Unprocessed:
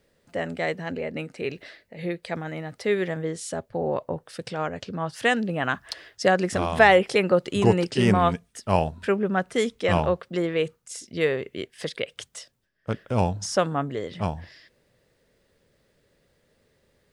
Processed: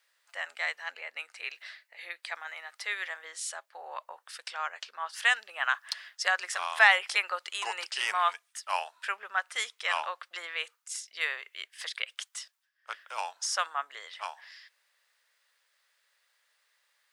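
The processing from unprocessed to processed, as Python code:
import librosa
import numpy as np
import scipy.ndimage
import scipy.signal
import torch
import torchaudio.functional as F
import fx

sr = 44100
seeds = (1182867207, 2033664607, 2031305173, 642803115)

y = scipy.signal.sosfilt(scipy.signal.butter(4, 1000.0, 'highpass', fs=sr, output='sos'), x)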